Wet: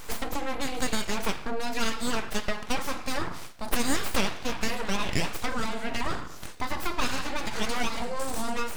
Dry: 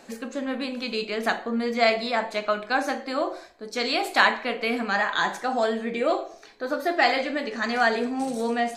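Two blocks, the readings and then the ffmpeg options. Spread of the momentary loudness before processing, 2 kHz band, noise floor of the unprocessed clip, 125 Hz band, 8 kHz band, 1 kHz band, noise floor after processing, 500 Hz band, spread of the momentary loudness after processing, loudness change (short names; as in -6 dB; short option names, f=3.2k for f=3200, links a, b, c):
9 LU, -8.0 dB, -48 dBFS, n/a, +8.5 dB, -7.0 dB, -39 dBFS, -9.0 dB, 5 LU, -6.0 dB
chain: -af "acompressor=threshold=-33dB:ratio=4,crystalizer=i=4.5:c=0,aeval=exprs='abs(val(0))':c=same,highshelf=f=2.4k:g=-7.5,volume=7.5dB"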